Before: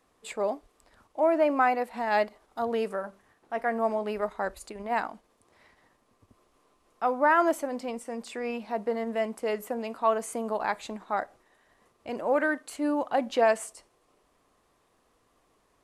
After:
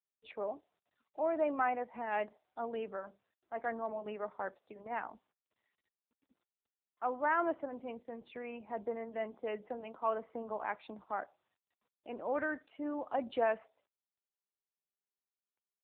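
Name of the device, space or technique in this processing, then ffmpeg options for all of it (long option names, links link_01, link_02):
mobile call with aggressive noise cancelling: -af "highpass=frequency=170:width=0.5412,highpass=frequency=170:width=1.3066,afftdn=noise_reduction=34:noise_floor=-49,volume=-8dB" -ar 8000 -c:a libopencore_amrnb -b:a 7950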